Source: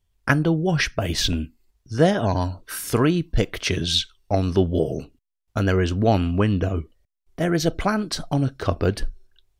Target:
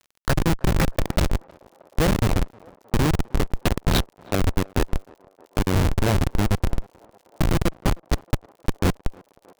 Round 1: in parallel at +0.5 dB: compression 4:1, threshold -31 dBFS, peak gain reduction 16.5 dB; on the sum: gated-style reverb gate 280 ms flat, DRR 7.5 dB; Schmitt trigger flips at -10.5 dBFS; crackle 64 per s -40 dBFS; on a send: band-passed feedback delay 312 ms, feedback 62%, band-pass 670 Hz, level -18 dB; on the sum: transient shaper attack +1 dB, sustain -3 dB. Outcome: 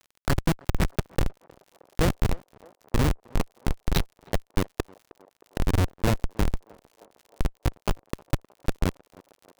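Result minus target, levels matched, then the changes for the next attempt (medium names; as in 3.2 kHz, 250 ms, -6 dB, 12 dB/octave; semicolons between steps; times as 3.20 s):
compression: peak gain reduction +7 dB
change: compression 4:1, threshold -21.5 dBFS, peak gain reduction 9.5 dB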